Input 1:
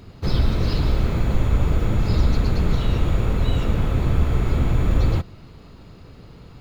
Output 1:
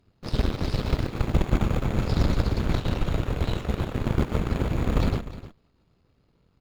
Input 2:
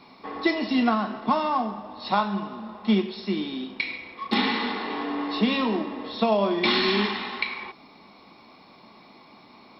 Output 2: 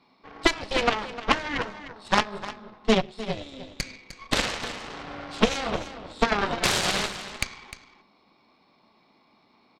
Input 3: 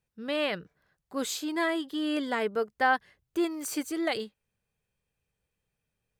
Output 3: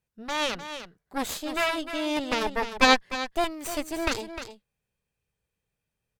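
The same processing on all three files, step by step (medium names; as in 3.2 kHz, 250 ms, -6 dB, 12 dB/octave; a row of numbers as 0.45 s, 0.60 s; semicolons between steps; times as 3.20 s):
Chebyshev shaper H 6 -22 dB, 7 -14 dB, 8 -13 dB, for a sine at -5.5 dBFS; on a send: delay 304 ms -10 dB; on the sum: upward expansion 1.5:1, over -32 dBFS; normalise loudness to -27 LUFS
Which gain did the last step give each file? -3.5 dB, +3.5 dB, +10.5 dB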